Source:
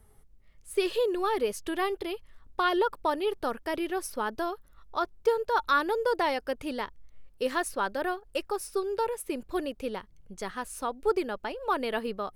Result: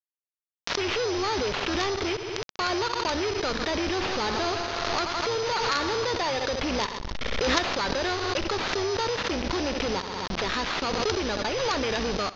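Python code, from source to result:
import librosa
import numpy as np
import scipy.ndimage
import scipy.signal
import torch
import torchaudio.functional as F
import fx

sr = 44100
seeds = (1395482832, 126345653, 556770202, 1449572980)

y = fx.octave_divider(x, sr, octaves=2, level_db=-2.0)
y = fx.rider(y, sr, range_db=3, speed_s=0.5)
y = fx.echo_heads(y, sr, ms=83, heads='first and second', feedback_pct=70, wet_db=-17.0, at=(3.84, 6.05))
y = np.repeat(y[::8], 8)[:len(y)]
y = fx.high_shelf(y, sr, hz=3400.0, db=7.0)
y = fx.quant_companded(y, sr, bits=2)
y = scipy.signal.sosfilt(scipy.signal.butter(12, 6100.0, 'lowpass', fs=sr, output='sos'), y)
y = fx.low_shelf(y, sr, hz=230.0, db=-5.0)
y = fx.echo_feedback(y, sr, ms=64, feedback_pct=43, wet_db=-17)
y = fx.pre_swell(y, sr, db_per_s=21.0)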